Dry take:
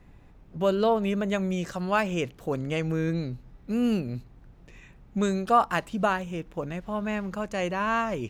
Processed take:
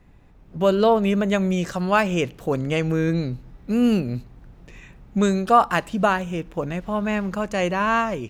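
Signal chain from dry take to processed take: level rider gain up to 6 dB; on a send: reverberation RT60 0.60 s, pre-delay 4 ms, DRR 24 dB

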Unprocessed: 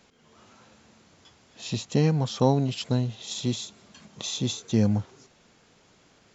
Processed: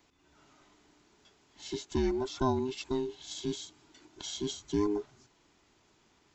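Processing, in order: every band turned upside down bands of 500 Hz; trim -7.5 dB

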